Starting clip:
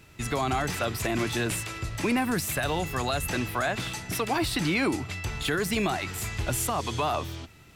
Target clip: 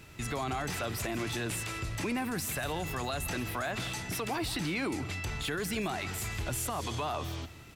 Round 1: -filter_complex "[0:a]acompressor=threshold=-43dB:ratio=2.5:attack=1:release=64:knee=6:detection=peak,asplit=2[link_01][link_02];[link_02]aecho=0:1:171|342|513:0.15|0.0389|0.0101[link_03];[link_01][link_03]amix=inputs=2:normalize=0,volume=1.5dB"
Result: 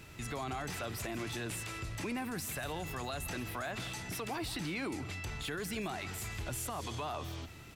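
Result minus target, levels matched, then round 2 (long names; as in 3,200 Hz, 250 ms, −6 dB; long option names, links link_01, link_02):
downward compressor: peak gain reduction +5 dB
-filter_complex "[0:a]acompressor=threshold=-35dB:ratio=2.5:attack=1:release=64:knee=6:detection=peak,asplit=2[link_01][link_02];[link_02]aecho=0:1:171|342|513:0.15|0.0389|0.0101[link_03];[link_01][link_03]amix=inputs=2:normalize=0,volume=1.5dB"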